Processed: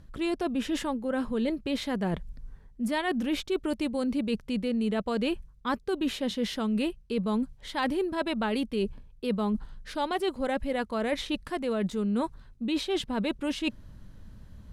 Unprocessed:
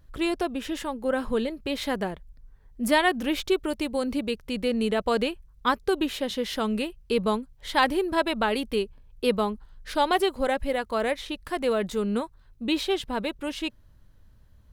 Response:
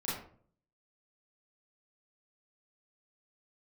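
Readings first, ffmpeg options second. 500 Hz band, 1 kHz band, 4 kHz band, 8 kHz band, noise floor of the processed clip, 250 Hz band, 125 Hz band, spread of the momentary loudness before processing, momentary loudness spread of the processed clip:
-5.0 dB, -6.5 dB, -4.5 dB, -4.5 dB, -54 dBFS, 0.0 dB, +2.0 dB, 8 LU, 5 LU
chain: -af "lowpass=11000,equalizer=f=200:t=o:w=1.1:g=8,areverse,acompressor=threshold=0.02:ratio=6,areverse,volume=2.24"

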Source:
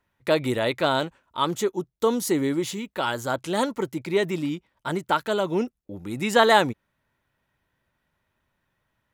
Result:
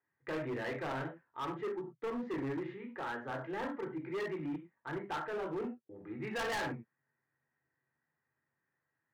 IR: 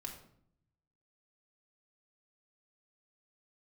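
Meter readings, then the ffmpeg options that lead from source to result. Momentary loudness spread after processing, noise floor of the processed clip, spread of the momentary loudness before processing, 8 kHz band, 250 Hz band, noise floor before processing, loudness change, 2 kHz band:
6 LU, under -85 dBFS, 11 LU, -21.5 dB, -13.0 dB, -77 dBFS, -15.0 dB, -13.0 dB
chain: -filter_complex "[0:a]highpass=f=120:w=0.5412,highpass=f=120:w=1.3066,equalizer=f=130:t=q:w=4:g=4,equalizer=f=190:t=q:w=4:g=-9,equalizer=f=1800:t=q:w=4:g=8,lowpass=f=2100:w=0.5412,lowpass=f=2100:w=1.3066[s0];[1:a]atrim=start_sample=2205,afade=t=out:st=0.2:d=0.01,atrim=end_sample=9261,asetrate=57330,aresample=44100[s1];[s0][s1]afir=irnorm=-1:irlink=0,volume=23.7,asoftclip=hard,volume=0.0422,volume=0.473"

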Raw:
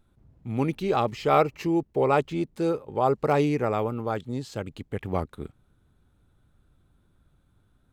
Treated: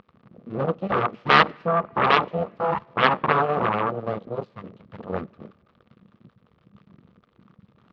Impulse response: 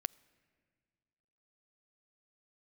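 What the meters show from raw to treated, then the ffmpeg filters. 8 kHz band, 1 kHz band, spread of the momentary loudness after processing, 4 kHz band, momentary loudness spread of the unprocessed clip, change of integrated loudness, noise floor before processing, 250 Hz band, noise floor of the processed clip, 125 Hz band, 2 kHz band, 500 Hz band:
no reading, +5.5 dB, 16 LU, +11.5 dB, 13 LU, +3.5 dB, -66 dBFS, -3.5 dB, -64 dBFS, -1.5 dB, +12.5 dB, -0.5 dB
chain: -filter_complex "[0:a]aeval=exprs='val(0)+0.5*0.0668*sgn(val(0))':c=same,bandreject=f=50:t=h:w=6,bandreject=f=100:t=h:w=6,bandreject=f=150:t=h:w=6,bandreject=f=200:t=h:w=6,bandreject=f=250:t=h:w=6,bandreject=f=300:t=h:w=6,bandreject=f=350:t=h:w=6,bandreject=f=400:t=h:w=6,bandreject=f=450:t=h:w=6,bandreject=f=500:t=h:w=6,aeval=exprs='abs(val(0))':c=same,afwtdn=0.0501,aeval=exprs='0.473*(cos(1*acos(clip(val(0)/0.473,-1,1)))-cos(1*PI/2))+0.0841*(cos(2*acos(clip(val(0)/0.473,-1,1)))-cos(2*PI/2))+0.0266*(cos(4*acos(clip(val(0)/0.473,-1,1)))-cos(4*PI/2))+0.15*(cos(8*acos(clip(val(0)/0.473,-1,1)))-cos(8*PI/2))':c=same,highpass=170,equalizer=f=200:t=q:w=4:g=6,equalizer=f=290:t=q:w=4:g=-5,equalizer=f=480:t=q:w=4:g=4,equalizer=f=1200:t=q:w=4:g=10,lowpass=f=3800:w=0.5412,lowpass=f=3800:w=1.3066,asplit=2[s0][s1];[1:a]atrim=start_sample=2205[s2];[s1][s2]afir=irnorm=-1:irlink=0,volume=1.12[s3];[s0][s3]amix=inputs=2:normalize=0,volume=0.841"

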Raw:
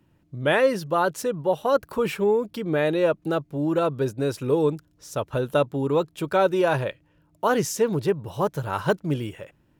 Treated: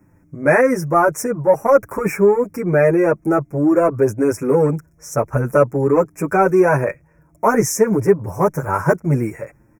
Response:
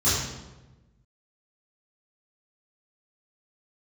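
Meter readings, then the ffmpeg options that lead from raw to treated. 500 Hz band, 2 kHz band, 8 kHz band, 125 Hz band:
+7.0 dB, +7.0 dB, +8.5 dB, +8.0 dB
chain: -filter_complex "[0:a]asplit=2[s0][s1];[s1]asoftclip=type=tanh:threshold=0.075,volume=0.473[s2];[s0][s2]amix=inputs=2:normalize=0,asuperstop=centerf=3600:order=12:qfactor=1.2,asplit=2[s3][s4];[s4]adelay=7.4,afreqshift=-0.49[s5];[s3][s5]amix=inputs=2:normalize=1,volume=2.66"

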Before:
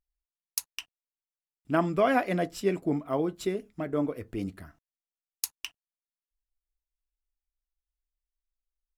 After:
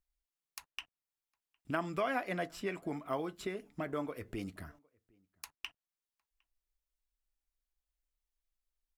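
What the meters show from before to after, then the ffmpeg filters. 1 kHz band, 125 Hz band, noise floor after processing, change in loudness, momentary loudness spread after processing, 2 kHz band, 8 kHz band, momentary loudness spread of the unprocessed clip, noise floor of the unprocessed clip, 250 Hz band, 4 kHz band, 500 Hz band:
-8.0 dB, -10.0 dB, under -85 dBFS, -9.0 dB, 18 LU, -5.0 dB, -15.5 dB, 14 LU, under -85 dBFS, -10.5 dB, -7.0 dB, -9.5 dB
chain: -filter_complex "[0:a]acrossover=split=810|2700[s0][s1][s2];[s0]acompressor=threshold=0.0112:ratio=4[s3];[s1]acompressor=threshold=0.0178:ratio=4[s4];[s2]acompressor=threshold=0.00251:ratio=4[s5];[s3][s4][s5]amix=inputs=3:normalize=0,asplit=2[s6][s7];[s7]adelay=758,volume=0.0316,highshelf=f=4000:g=-17.1[s8];[s6][s8]amix=inputs=2:normalize=0"

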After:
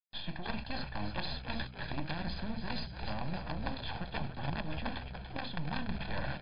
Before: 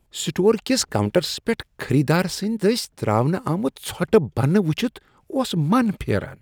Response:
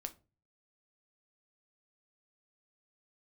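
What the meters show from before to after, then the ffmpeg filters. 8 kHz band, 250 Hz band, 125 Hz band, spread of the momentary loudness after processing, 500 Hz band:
under -40 dB, -19.5 dB, -16.5 dB, 2 LU, -24.0 dB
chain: -filter_complex "[0:a]acrossover=split=140|560|1900[s0][s1][s2][s3];[s0]acompressor=threshold=0.0112:ratio=4[s4];[s1]acompressor=threshold=0.0562:ratio=4[s5];[s2]acompressor=threshold=0.0282:ratio=4[s6];[s3]acompressor=threshold=0.0178:ratio=4[s7];[s4][s5][s6][s7]amix=inputs=4:normalize=0,aresample=16000,asoftclip=type=tanh:threshold=0.0944,aresample=44100,bandreject=f=50:t=h:w=6,bandreject=f=100:t=h:w=6,bandreject=f=150:t=h:w=6,bandreject=f=200:t=h:w=6[s8];[1:a]atrim=start_sample=2205,afade=t=out:st=0.16:d=0.01,atrim=end_sample=7497[s9];[s8][s9]afir=irnorm=-1:irlink=0,acrusher=bits=5:dc=4:mix=0:aa=0.000001,areverse,acompressor=threshold=0.01:ratio=8,areverse,aeval=exprs='(mod(35.5*val(0)+1,2)-1)/35.5':c=same,aecho=1:1:1.2:0.74,asplit=7[s10][s11][s12][s13][s14][s15][s16];[s11]adelay=289,afreqshift=-64,volume=0.376[s17];[s12]adelay=578,afreqshift=-128,volume=0.202[s18];[s13]adelay=867,afreqshift=-192,volume=0.11[s19];[s14]adelay=1156,afreqshift=-256,volume=0.0589[s20];[s15]adelay=1445,afreqshift=-320,volume=0.032[s21];[s16]adelay=1734,afreqshift=-384,volume=0.0172[s22];[s10][s17][s18][s19][s20][s21][s22]amix=inputs=7:normalize=0,volume=2.11" -ar 11025 -c:a libmp3lame -b:a 64k

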